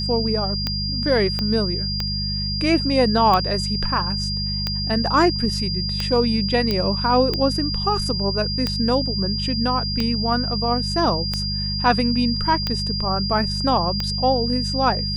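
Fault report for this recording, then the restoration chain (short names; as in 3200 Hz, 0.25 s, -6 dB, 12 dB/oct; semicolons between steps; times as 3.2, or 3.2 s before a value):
hum 50 Hz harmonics 4 -27 dBFS
tick 45 rpm -9 dBFS
tone 4800 Hz -25 dBFS
1.39 pop -11 dBFS
6.71 pop -9 dBFS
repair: de-click; de-hum 50 Hz, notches 4; notch 4800 Hz, Q 30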